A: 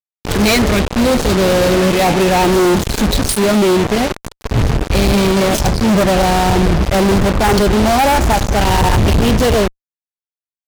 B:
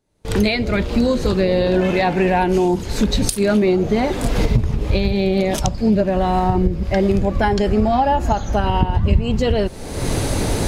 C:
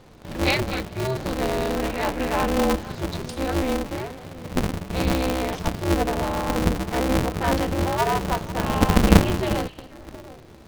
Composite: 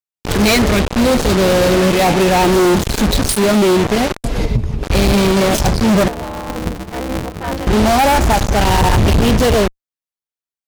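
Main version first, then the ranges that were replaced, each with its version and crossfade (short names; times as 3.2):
A
4.24–4.83 from B
6.08–7.67 from C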